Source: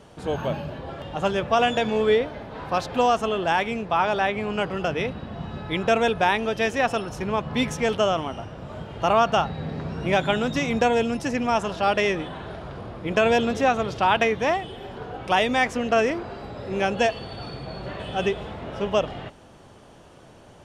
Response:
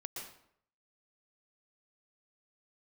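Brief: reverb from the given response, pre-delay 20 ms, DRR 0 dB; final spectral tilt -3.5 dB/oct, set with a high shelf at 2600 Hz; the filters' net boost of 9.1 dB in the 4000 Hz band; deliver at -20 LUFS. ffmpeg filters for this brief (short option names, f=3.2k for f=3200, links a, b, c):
-filter_complex "[0:a]highshelf=f=2.6k:g=6,equalizer=f=4k:t=o:g=7.5,asplit=2[a][b];[1:a]atrim=start_sample=2205,adelay=20[c];[b][c]afir=irnorm=-1:irlink=0,volume=1.5dB[d];[a][d]amix=inputs=2:normalize=0,volume=-1dB"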